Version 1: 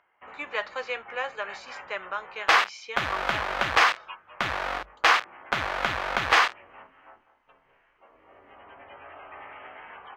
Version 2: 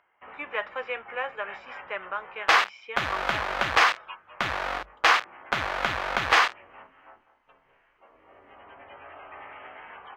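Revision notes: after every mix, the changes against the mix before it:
speech: add Savitzky-Golay filter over 25 samples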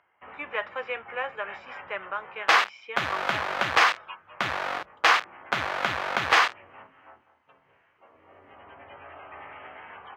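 first sound: remove high-pass 190 Hz 6 dB/octave; master: add high-pass 82 Hz 24 dB/octave

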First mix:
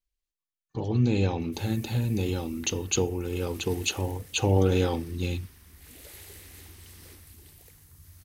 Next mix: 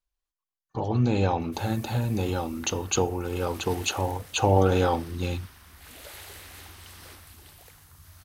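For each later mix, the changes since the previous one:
background: add peaking EQ 3.1 kHz +6.5 dB 1.8 oct; master: add high-order bell 930 Hz +9 dB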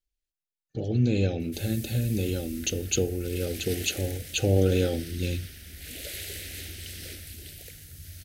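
background +7.5 dB; master: add Butterworth band-stop 1 kHz, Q 0.73

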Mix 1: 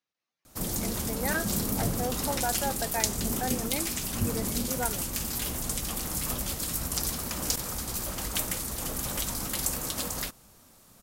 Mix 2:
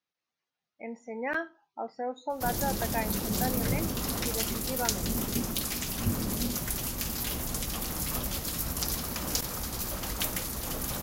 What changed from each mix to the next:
background: entry +1.85 s; master: add peaking EQ 8.4 kHz -7.5 dB 0.38 oct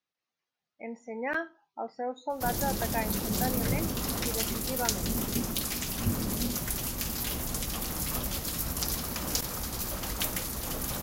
no change

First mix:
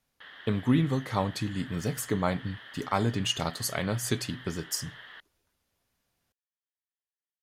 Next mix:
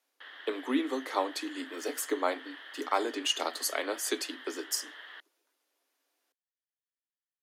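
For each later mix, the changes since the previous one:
master: add steep high-pass 270 Hz 96 dB/octave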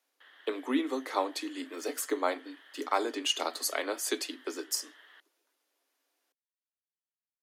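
background -9.0 dB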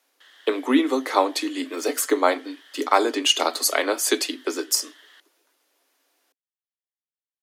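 speech +10.5 dB; background: remove distance through air 380 m

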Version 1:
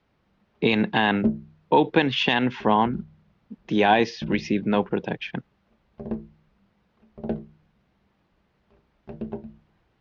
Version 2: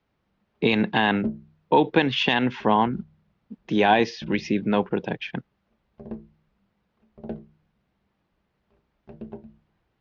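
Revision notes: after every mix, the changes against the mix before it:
background -5.5 dB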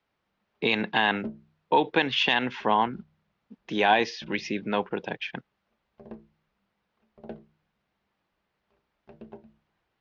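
master: add bass shelf 390 Hz -11 dB

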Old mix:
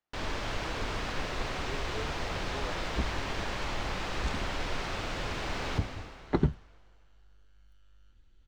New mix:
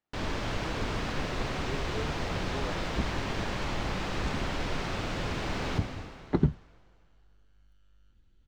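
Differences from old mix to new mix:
second sound -3.5 dB; master: add peaking EQ 170 Hz +6.5 dB 2.3 oct

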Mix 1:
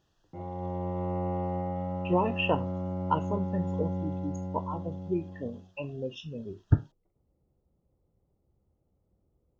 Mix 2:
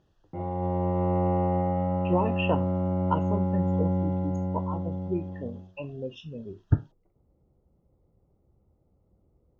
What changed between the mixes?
background +6.5 dB; master: add treble shelf 5 kHz -9.5 dB

